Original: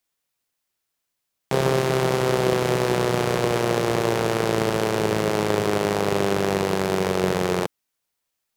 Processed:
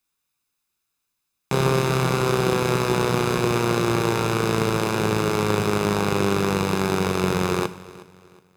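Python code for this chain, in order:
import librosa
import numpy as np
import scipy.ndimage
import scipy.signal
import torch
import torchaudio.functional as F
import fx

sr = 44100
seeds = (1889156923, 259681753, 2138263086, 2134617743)

p1 = x + 0.49 * np.pad(x, (int(0.8 * sr / 1000.0), 0))[:len(x)]
p2 = p1 + fx.echo_feedback(p1, sr, ms=366, feedback_pct=35, wet_db=-19.5, dry=0)
y = fx.rev_double_slope(p2, sr, seeds[0], early_s=0.6, late_s=2.4, knee_db=-25, drr_db=12.0)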